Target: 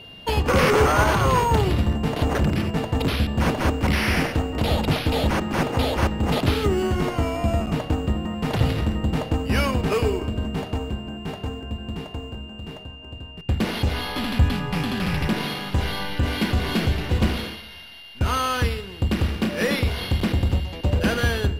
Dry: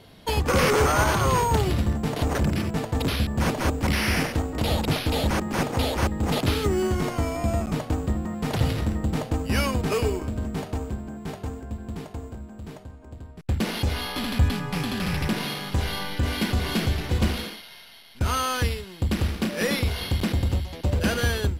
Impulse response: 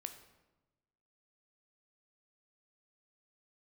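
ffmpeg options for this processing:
-filter_complex "[0:a]aeval=exprs='val(0)+0.00708*sin(2*PI*2800*n/s)':channel_layout=same,asplit=2[link_01][link_02];[1:a]atrim=start_sample=2205,lowpass=4800[link_03];[link_02][link_03]afir=irnorm=-1:irlink=0,volume=1dB[link_04];[link_01][link_04]amix=inputs=2:normalize=0,volume=-2dB"

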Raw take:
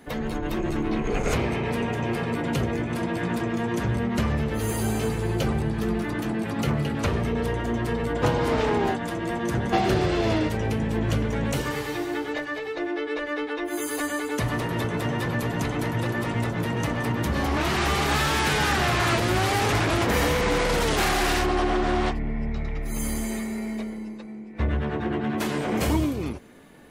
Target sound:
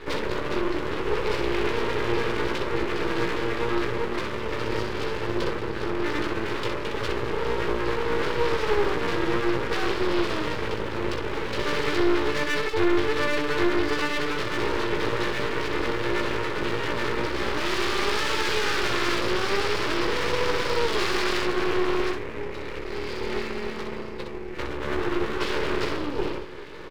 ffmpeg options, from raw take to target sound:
ffmpeg -i in.wav -filter_complex "[0:a]acompressor=threshold=-29dB:ratio=6,aresample=11025,aeval=exprs='0.0944*sin(PI/2*2.82*val(0)/0.0944)':channel_layout=same,aresample=44100,lowshelf=frequency=290:width_type=q:width=3:gain=-9.5,asplit=2[link_01][link_02];[link_02]aecho=0:1:17|63:0.596|0.596[link_03];[link_01][link_03]amix=inputs=2:normalize=0,aeval=exprs='max(val(0),0)':channel_layout=same,equalizer=frequency=720:width_type=o:width=0.37:gain=-12.5" out.wav

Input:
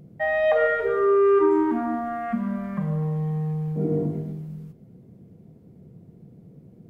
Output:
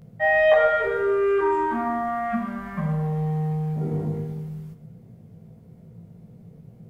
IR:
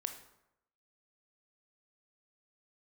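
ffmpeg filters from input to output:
-filter_complex "[0:a]equalizer=frequency=310:width=1.7:gain=-12,asplit=2[link_01][link_02];[1:a]atrim=start_sample=2205,adelay=18[link_03];[link_02][link_03]afir=irnorm=-1:irlink=0,volume=4.5dB[link_04];[link_01][link_04]amix=inputs=2:normalize=0"

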